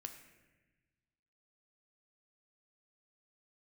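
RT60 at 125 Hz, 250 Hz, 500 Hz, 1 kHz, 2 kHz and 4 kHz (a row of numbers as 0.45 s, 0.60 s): 2.0 s, 1.6 s, 1.3 s, 1.1 s, 1.4 s, 0.95 s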